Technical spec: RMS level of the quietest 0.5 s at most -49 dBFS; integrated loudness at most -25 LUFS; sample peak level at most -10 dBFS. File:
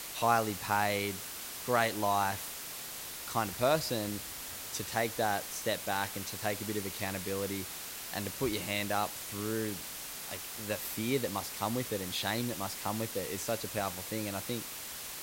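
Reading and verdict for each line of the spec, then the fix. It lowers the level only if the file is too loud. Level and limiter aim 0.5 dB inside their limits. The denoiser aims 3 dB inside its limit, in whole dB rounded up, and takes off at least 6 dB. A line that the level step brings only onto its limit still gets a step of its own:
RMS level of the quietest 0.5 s -43 dBFS: fail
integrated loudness -34.0 LUFS: OK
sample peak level -13.0 dBFS: OK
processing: denoiser 9 dB, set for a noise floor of -43 dBFS

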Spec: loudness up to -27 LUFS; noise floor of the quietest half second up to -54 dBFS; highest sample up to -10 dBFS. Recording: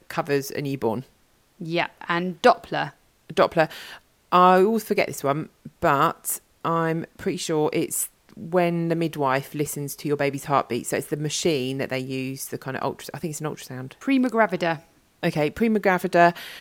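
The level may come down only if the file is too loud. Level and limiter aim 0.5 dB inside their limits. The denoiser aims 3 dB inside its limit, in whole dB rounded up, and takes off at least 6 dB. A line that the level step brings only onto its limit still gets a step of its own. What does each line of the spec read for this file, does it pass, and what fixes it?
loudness -24.0 LUFS: fail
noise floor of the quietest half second -61 dBFS: OK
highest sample -3.5 dBFS: fail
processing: gain -3.5 dB; limiter -10.5 dBFS

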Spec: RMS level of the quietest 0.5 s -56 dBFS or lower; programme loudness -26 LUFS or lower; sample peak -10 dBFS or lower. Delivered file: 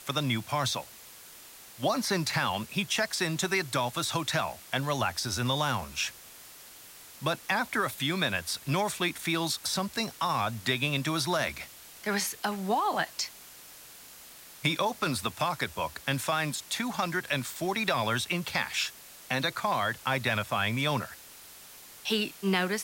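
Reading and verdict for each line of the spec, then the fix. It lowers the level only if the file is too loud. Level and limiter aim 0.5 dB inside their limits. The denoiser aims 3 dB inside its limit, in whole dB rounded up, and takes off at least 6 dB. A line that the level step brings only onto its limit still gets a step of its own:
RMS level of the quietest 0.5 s -50 dBFS: fail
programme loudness -30.0 LUFS: OK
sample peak -13.5 dBFS: OK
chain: denoiser 9 dB, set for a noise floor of -50 dBFS

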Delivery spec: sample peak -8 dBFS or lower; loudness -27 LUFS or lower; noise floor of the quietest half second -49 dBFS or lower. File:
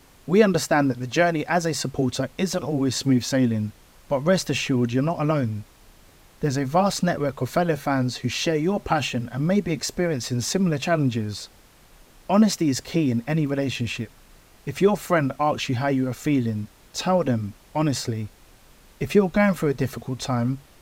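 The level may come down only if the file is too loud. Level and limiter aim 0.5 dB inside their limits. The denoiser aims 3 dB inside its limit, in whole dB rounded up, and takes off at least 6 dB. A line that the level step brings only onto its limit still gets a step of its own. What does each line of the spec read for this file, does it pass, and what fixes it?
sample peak -4.5 dBFS: fail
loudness -23.5 LUFS: fail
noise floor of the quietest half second -52 dBFS: OK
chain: gain -4 dB

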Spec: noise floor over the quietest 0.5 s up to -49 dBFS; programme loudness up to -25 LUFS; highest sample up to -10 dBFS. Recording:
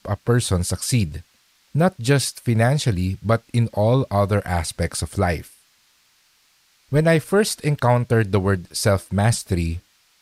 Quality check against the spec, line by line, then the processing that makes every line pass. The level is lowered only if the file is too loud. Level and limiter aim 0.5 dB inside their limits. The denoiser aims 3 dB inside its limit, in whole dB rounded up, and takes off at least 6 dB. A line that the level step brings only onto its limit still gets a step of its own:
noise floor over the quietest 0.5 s -60 dBFS: OK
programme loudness -21.0 LUFS: fail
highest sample -6.0 dBFS: fail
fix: gain -4.5 dB

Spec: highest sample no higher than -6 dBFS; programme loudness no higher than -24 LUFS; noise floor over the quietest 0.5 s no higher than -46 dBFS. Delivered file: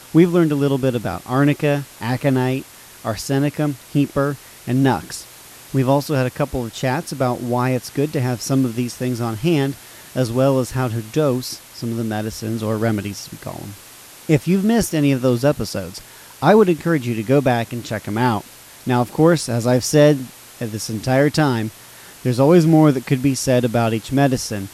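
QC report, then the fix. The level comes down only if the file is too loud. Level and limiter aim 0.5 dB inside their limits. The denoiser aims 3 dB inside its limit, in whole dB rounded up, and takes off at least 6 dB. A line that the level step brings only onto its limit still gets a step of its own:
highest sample -2.0 dBFS: fail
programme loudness -19.0 LUFS: fail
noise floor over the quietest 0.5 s -42 dBFS: fail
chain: gain -5.5 dB

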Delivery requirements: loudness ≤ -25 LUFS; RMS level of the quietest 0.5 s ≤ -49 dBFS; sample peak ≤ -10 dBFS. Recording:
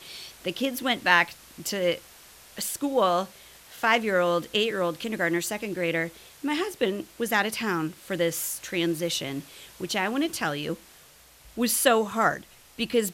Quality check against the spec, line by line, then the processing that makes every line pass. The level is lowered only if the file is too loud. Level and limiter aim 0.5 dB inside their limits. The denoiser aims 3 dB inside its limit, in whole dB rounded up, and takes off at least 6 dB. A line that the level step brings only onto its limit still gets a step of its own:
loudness -26.5 LUFS: OK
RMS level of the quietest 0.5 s -54 dBFS: OK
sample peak -4.5 dBFS: fail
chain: limiter -10.5 dBFS

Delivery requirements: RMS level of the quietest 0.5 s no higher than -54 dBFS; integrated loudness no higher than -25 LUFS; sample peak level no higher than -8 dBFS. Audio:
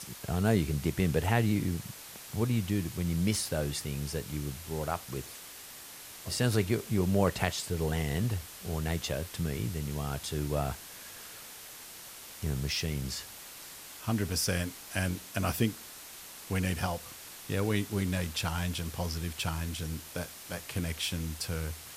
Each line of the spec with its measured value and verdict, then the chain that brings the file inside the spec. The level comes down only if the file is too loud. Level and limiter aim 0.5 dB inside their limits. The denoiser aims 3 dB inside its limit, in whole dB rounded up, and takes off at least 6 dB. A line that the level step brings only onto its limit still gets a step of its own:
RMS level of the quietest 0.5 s -47 dBFS: fail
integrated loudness -32.5 LUFS: OK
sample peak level -11.5 dBFS: OK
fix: denoiser 10 dB, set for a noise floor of -47 dBFS

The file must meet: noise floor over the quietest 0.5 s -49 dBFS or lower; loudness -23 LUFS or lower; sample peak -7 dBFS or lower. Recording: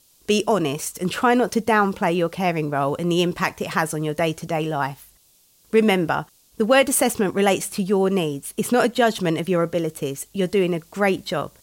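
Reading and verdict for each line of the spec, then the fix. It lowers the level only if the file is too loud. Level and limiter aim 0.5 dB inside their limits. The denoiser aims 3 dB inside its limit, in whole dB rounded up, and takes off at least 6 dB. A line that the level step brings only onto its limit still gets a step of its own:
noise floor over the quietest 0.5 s -58 dBFS: OK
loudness -21.5 LUFS: fail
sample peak -5.5 dBFS: fail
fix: gain -2 dB

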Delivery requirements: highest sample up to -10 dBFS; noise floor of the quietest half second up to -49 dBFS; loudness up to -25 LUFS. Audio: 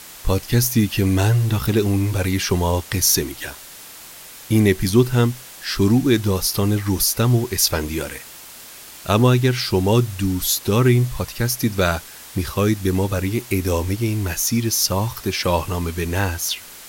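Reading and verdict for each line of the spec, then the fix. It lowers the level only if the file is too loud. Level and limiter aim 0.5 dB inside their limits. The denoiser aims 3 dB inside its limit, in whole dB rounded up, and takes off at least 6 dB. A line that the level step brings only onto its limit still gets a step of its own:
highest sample -3.5 dBFS: fail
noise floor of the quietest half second -40 dBFS: fail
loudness -19.5 LUFS: fail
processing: denoiser 6 dB, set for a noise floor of -40 dBFS; gain -6 dB; limiter -10.5 dBFS

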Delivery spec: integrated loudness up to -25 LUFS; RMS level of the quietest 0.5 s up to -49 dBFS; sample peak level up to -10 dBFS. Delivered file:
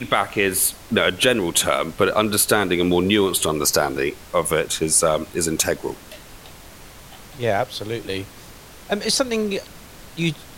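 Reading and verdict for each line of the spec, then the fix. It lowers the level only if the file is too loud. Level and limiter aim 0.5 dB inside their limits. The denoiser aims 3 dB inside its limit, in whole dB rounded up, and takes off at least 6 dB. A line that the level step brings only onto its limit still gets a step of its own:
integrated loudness -20.0 LUFS: fail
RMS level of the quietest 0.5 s -42 dBFS: fail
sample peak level -4.0 dBFS: fail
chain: denoiser 6 dB, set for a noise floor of -42 dBFS; gain -5.5 dB; limiter -10.5 dBFS

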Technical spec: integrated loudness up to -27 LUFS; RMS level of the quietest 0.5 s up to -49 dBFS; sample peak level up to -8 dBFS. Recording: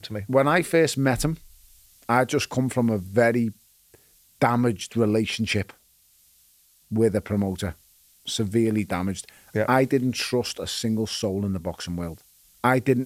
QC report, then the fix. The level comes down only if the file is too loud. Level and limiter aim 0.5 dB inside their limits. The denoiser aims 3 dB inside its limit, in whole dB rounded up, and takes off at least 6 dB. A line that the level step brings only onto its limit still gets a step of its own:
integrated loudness -24.0 LUFS: fail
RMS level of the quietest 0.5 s -60 dBFS: OK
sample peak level -5.5 dBFS: fail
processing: gain -3.5 dB

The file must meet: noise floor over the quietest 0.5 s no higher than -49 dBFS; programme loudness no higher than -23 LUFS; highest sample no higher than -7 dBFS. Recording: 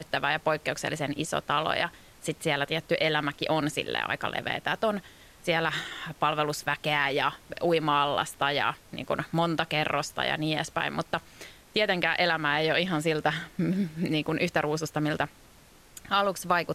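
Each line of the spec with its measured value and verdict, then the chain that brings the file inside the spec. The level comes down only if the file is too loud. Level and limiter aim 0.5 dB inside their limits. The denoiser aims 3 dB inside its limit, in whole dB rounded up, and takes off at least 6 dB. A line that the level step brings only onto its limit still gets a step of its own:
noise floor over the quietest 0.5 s -55 dBFS: OK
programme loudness -28.0 LUFS: OK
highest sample -11.0 dBFS: OK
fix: none

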